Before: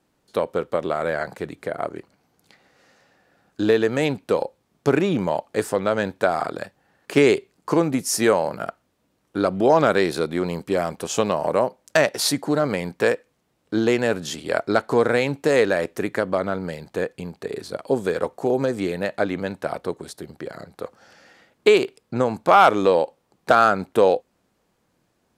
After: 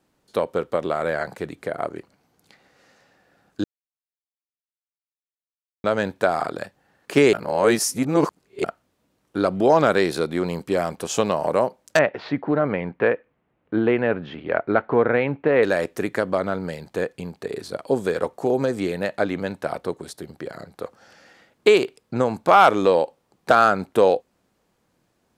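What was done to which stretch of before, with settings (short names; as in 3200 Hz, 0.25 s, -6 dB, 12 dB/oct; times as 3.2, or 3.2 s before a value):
3.64–5.84 mute
7.33–8.64 reverse
11.99–15.63 inverse Chebyshev low-pass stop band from 9800 Hz, stop band 70 dB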